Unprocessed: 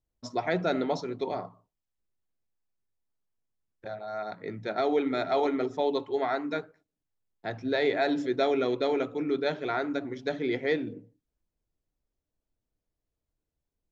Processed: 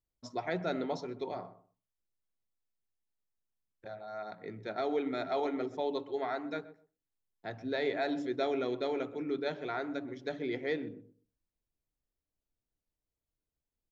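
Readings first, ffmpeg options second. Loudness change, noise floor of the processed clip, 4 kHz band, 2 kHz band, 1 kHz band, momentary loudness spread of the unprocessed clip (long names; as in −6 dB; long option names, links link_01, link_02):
−6.5 dB, below −85 dBFS, −6.5 dB, −6.5 dB, −6.5 dB, 11 LU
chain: -filter_complex "[0:a]asplit=2[link_01][link_02];[link_02]adelay=127,lowpass=frequency=1000:poles=1,volume=-14dB,asplit=2[link_03][link_04];[link_04]adelay=127,lowpass=frequency=1000:poles=1,volume=0.21[link_05];[link_01][link_03][link_05]amix=inputs=3:normalize=0,volume=-6.5dB"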